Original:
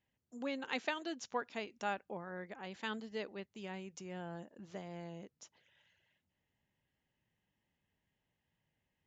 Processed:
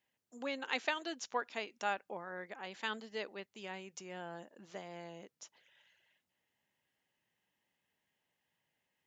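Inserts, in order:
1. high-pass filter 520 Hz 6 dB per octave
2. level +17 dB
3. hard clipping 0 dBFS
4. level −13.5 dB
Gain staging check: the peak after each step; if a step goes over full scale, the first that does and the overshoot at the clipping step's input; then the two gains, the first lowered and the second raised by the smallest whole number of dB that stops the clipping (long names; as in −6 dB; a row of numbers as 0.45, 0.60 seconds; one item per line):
−20.5, −3.5, −3.5, −17.0 dBFS
no step passes full scale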